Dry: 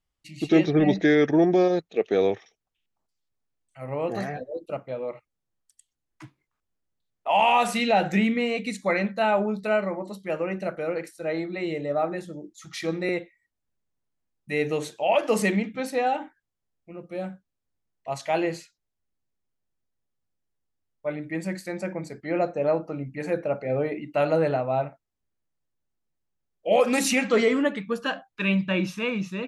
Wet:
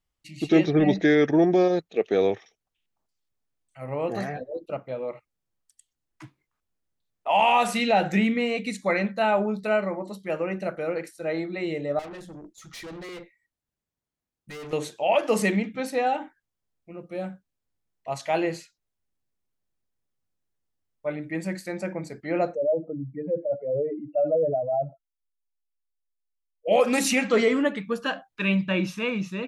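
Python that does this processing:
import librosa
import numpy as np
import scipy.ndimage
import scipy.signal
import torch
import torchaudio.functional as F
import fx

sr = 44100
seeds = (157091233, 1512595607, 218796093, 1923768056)

y = fx.peak_eq(x, sr, hz=9300.0, db=-9.0, octaves=0.77, at=(4.33, 4.86))
y = fx.tube_stage(y, sr, drive_db=37.0, bias=0.4, at=(11.99, 14.73))
y = fx.spec_expand(y, sr, power=2.8, at=(22.54, 26.67), fade=0.02)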